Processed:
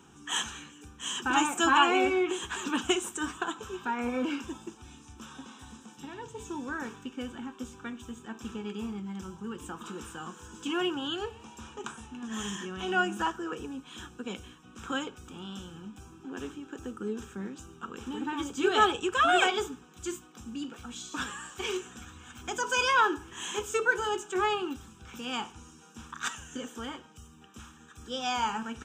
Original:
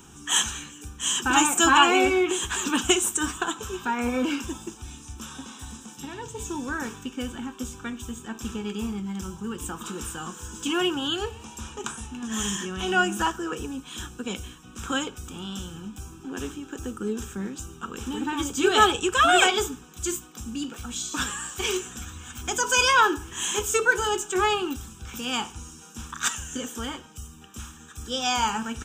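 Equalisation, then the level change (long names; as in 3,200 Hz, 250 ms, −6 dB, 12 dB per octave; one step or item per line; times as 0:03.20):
high-pass filter 150 Hz 6 dB per octave
low-pass filter 2,900 Hz 6 dB per octave
−4.0 dB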